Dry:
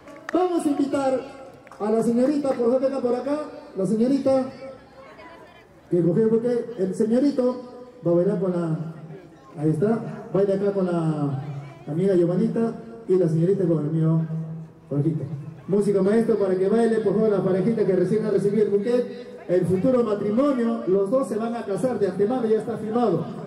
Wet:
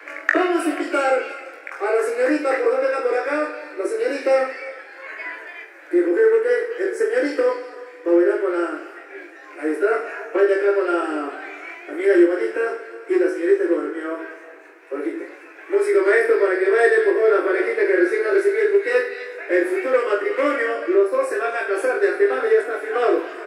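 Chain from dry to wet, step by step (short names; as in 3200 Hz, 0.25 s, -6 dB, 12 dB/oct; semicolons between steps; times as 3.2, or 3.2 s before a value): steep high-pass 300 Hz 96 dB/oct; band shelf 1900 Hz +14.5 dB 1.1 oct; reverse bouncing-ball echo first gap 20 ms, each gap 1.15×, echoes 5; gain +1.5 dB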